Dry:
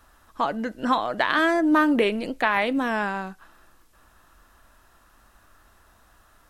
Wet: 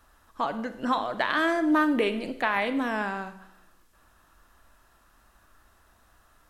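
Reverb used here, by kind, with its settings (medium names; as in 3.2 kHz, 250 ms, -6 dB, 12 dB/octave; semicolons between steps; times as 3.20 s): Schroeder reverb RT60 0.76 s, combs from 33 ms, DRR 10.5 dB; trim -4 dB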